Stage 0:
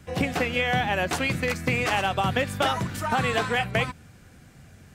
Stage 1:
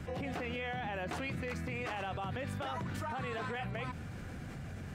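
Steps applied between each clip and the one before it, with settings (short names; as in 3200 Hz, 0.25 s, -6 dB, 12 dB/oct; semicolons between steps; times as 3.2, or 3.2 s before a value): high shelf 4100 Hz -11.5 dB; limiter -23.5 dBFS, peak gain reduction 11.5 dB; fast leveller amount 70%; gain -8 dB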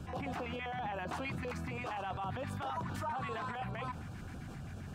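dynamic EQ 950 Hz, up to +8 dB, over -55 dBFS, Q 1.3; limiter -28 dBFS, peak gain reduction 4 dB; LFO notch square 7.6 Hz 510–2000 Hz; gain -1 dB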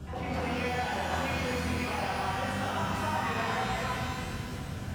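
shimmer reverb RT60 2.1 s, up +12 st, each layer -8 dB, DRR -6.5 dB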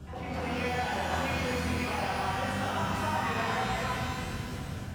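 AGC gain up to 3.5 dB; gain -3 dB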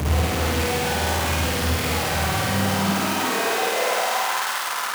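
infinite clipping; high-pass sweep 78 Hz -> 1100 Hz, 2.19–4.46; on a send: flutter echo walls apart 8.8 m, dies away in 1.1 s; on the sum: gain +5 dB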